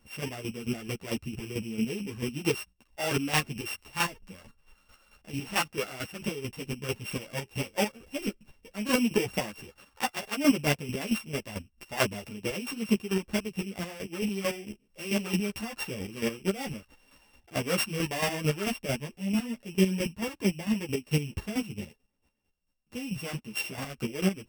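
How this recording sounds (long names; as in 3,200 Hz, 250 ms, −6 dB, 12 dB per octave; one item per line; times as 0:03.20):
a buzz of ramps at a fixed pitch in blocks of 16 samples
chopped level 4.5 Hz, depth 65%, duty 25%
a shimmering, thickened sound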